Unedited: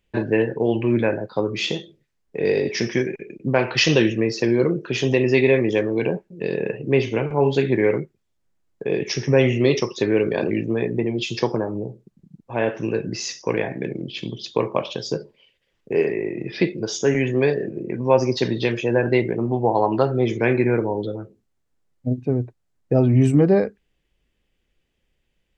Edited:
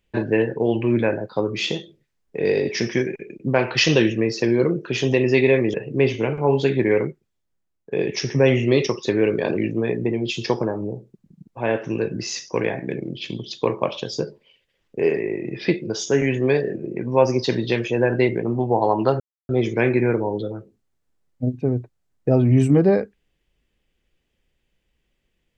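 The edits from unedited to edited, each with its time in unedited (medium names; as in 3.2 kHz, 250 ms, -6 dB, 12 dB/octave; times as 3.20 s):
5.74–6.67 s: delete
7.94–8.84 s: fade out, to -11.5 dB
20.13 s: insert silence 0.29 s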